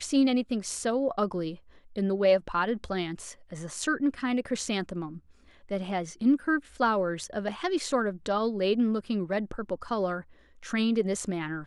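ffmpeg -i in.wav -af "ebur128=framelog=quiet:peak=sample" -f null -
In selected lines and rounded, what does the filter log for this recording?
Integrated loudness:
  I:         -28.9 LUFS
  Threshold: -39.3 LUFS
Loudness range:
  LRA:         3.5 LU
  Threshold: -49.4 LUFS
  LRA low:   -31.4 LUFS
  LRA high:  -27.9 LUFS
Sample peak:
  Peak:      -12.8 dBFS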